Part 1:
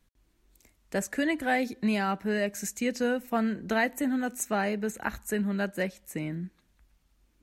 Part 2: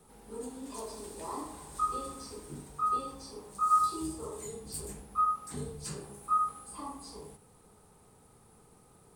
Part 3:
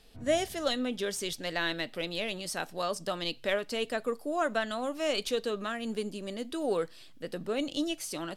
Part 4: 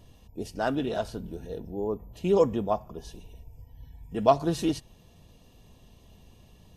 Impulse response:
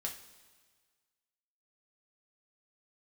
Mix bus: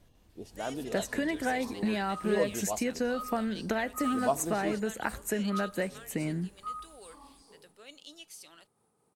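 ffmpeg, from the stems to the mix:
-filter_complex "[0:a]acompressor=threshold=-32dB:ratio=6,volume=2.5dB[a];[1:a]highpass=120,tremolo=f=4.6:d=0.36,adynamicequalizer=threshold=0.00631:dfrequency=1700:dqfactor=0.7:tfrequency=1700:tqfactor=0.7:attack=5:release=100:ratio=0.375:range=3.5:mode=boostabove:tftype=highshelf,adelay=350,volume=-12.5dB[b];[2:a]tiltshelf=f=1.1k:g=-10,adelay=300,volume=-19dB[c];[3:a]volume=-11dB[d];[a][b][c][d]amix=inputs=4:normalize=0,equalizer=f=600:w=0.56:g=3"

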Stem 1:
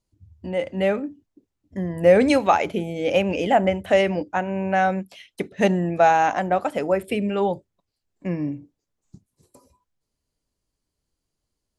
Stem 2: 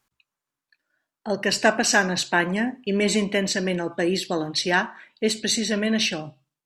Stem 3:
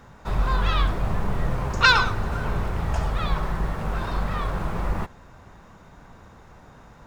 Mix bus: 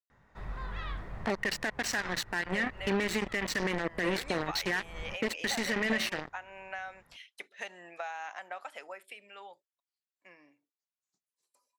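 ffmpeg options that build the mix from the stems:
-filter_complex "[0:a]highpass=1.3k,acompressor=threshold=-32dB:ratio=6,adelay=2000,volume=-4.5dB,afade=t=out:st=8.59:d=0.64:silence=0.446684[a];[1:a]equalizer=f=620:t=o:w=0.4:g=-4,acompressor=threshold=-30dB:ratio=6,acrusher=bits=4:mix=0:aa=0.5,volume=2.5dB,asplit=2[b][c];[2:a]adelay=100,volume=-17dB[d];[c]apad=whole_len=316046[e];[d][e]sidechaincompress=threshold=-38dB:ratio=8:attack=21:release=202[f];[b][f]amix=inputs=2:normalize=0,equalizer=f=1.9k:t=o:w=0.32:g=10.5,alimiter=limit=-21dB:level=0:latency=1:release=22,volume=0dB[g];[a][g]amix=inputs=2:normalize=0,highshelf=f=7k:g=-7.5"

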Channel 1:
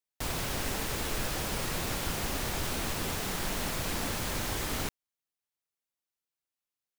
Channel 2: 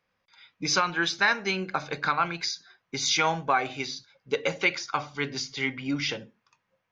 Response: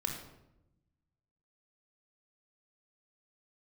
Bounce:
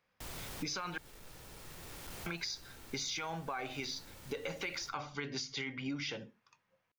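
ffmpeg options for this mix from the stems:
-filter_complex "[0:a]asoftclip=type=hard:threshold=-31dB,acrusher=bits=5:mix=0:aa=0.000001,volume=-13dB,asplit=2[a][b];[b]volume=-16dB[c];[1:a]alimiter=limit=-21.5dB:level=0:latency=1:release=24,volume=-2dB,asplit=3[d][e][f];[d]atrim=end=0.98,asetpts=PTS-STARTPTS,afade=t=out:st=0.976:d=0.004:c=hsin[g];[e]atrim=start=0.98:end=2.26,asetpts=PTS-STARTPTS,volume=0[h];[f]atrim=start=2.26,asetpts=PTS-STARTPTS,afade=t=in:d=0.004:c=hsin[i];[g][h][i]concat=n=3:v=0:a=1,asplit=2[j][k];[k]apad=whole_len=307980[l];[a][l]sidechaincompress=threshold=-47dB:ratio=8:attack=16:release=1140[m];[2:a]atrim=start_sample=2205[n];[c][n]afir=irnorm=-1:irlink=0[o];[m][j][o]amix=inputs=3:normalize=0,acompressor=threshold=-36dB:ratio=6"

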